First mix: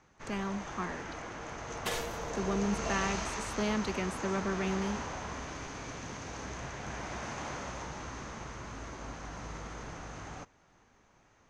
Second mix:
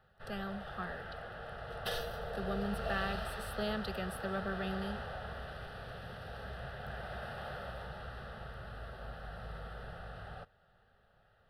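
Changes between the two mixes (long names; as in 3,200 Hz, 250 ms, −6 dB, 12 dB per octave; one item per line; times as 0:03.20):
speech: remove low-pass filter 8,000 Hz
first sound: remove low-pass with resonance 6,300 Hz, resonance Q 12
master: add phaser with its sweep stopped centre 1,500 Hz, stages 8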